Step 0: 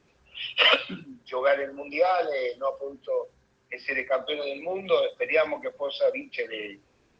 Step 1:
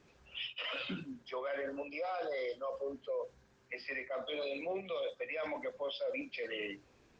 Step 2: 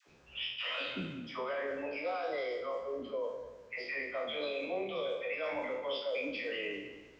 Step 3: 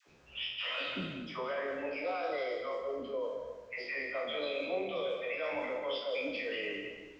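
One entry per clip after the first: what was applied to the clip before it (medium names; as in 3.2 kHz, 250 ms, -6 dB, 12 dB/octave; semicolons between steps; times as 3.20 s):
reverse; compression 8:1, threshold -30 dBFS, peak gain reduction 15 dB; reverse; peak limiter -29.5 dBFS, peak gain reduction 11.5 dB; trim -1 dB
spectral sustain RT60 0.67 s; phase dispersion lows, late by 79 ms, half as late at 630 Hz; tape echo 197 ms, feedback 36%, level -10 dB, low-pass 3.9 kHz
reverberation RT60 0.60 s, pre-delay 120 ms, DRR 7 dB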